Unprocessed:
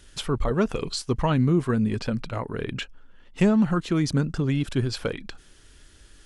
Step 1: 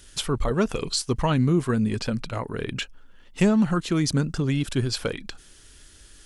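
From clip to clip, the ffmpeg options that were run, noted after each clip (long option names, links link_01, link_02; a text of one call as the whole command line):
ffmpeg -i in.wav -af "highshelf=frequency=4400:gain=8.5" out.wav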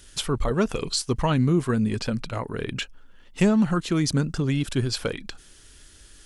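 ffmpeg -i in.wav -af anull out.wav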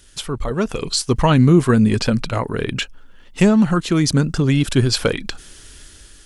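ffmpeg -i in.wav -af "dynaudnorm=framelen=390:gausssize=5:maxgain=11.5dB" out.wav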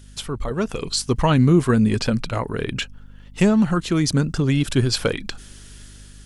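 ffmpeg -i in.wav -af "aeval=exprs='val(0)+0.01*(sin(2*PI*50*n/s)+sin(2*PI*2*50*n/s)/2+sin(2*PI*3*50*n/s)/3+sin(2*PI*4*50*n/s)/4+sin(2*PI*5*50*n/s)/5)':channel_layout=same,volume=-3dB" out.wav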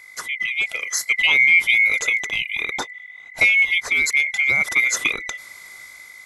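ffmpeg -i in.wav -af "afftfilt=real='real(if(lt(b,920),b+92*(1-2*mod(floor(b/92),2)),b),0)':imag='imag(if(lt(b,920),b+92*(1-2*mod(floor(b/92),2)),b),0)':win_size=2048:overlap=0.75" out.wav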